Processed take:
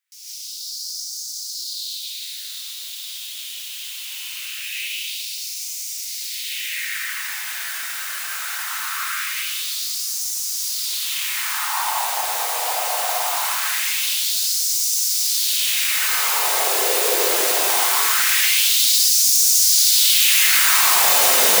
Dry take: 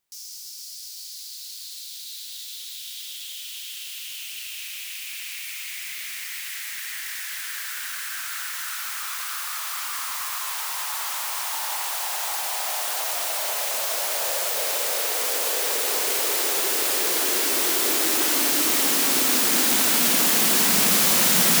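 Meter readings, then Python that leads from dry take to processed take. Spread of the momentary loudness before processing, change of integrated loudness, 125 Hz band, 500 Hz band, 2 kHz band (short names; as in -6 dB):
18 LU, +4.0 dB, n/a, +2.0 dB, +5.0 dB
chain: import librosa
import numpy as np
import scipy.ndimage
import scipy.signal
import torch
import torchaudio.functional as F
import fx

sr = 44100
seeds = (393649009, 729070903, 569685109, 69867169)

y = fx.filter_lfo_highpass(x, sr, shape='sine', hz=0.22, low_hz=490.0, high_hz=5800.0, q=2.5)
y = fx.rev_gated(y, sr, seeds[0], gate_ms=190, shape='rising', drr_db=-8.0)
y = F.gain(torch.from_numpy(y), -5.0).numpy()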